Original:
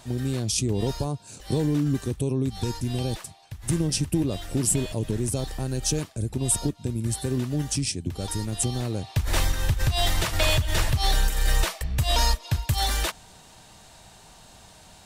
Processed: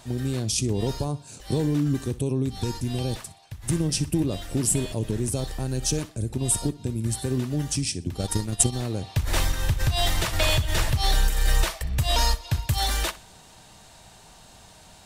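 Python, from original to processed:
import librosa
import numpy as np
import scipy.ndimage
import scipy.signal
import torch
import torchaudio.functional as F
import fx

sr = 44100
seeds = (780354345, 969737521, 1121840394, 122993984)

y = fx.echo_feedback(x, sr, ms=62, feedback_pct=31, wet_db=-18.5)
y = fx.transient(y, sr, attack_db=10, sustain_db=-9, at=(8.19, 8.72), fade=0.02)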